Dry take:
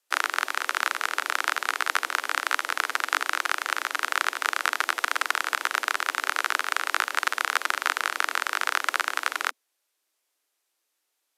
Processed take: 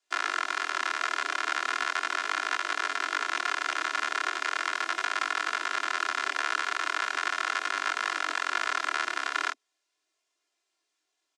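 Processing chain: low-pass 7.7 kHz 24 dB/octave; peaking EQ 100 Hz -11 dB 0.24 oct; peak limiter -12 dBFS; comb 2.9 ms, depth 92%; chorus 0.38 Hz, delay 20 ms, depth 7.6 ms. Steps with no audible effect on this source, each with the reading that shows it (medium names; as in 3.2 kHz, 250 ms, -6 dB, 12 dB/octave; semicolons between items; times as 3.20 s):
peaking EQ 100 Hz: input has nothing below 240 Hz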